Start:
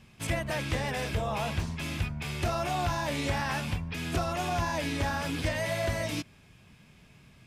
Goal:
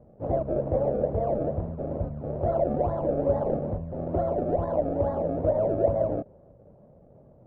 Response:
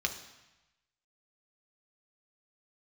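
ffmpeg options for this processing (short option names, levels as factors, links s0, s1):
-af "acrusher=samples=31:mix=1:aa=0.000001:lfo=1:lforange=31:lforate=2.3,lowpass=f=580:t=q:w=4.9"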